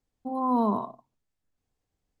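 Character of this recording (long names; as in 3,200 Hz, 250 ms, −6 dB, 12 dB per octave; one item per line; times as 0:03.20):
background noise floor −83 dBFS
spectral slope +1.0 dB per octave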